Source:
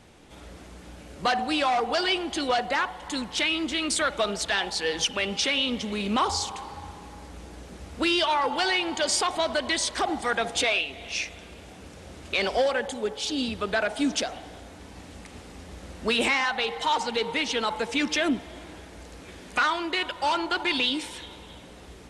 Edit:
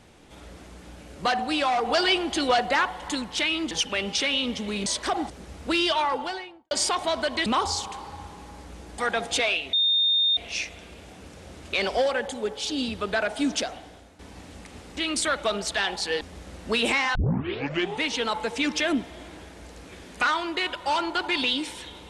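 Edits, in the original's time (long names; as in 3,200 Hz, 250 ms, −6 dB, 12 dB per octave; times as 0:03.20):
0:01.85–0:03.15: clip gain +3 dB
0:03.71–0:04.95: move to 0:15.57
0:06.10–0:07.62: swap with 0:09.78–0:10.22
0:08.30–0:09.03: fade out and dull
0:10.97: insert tone 3,650 Hz −18.5 dBFS 0.64 s
0:14.24–0:14.79: fade out, to −11 dB
0:16.51: tape start 0.86 s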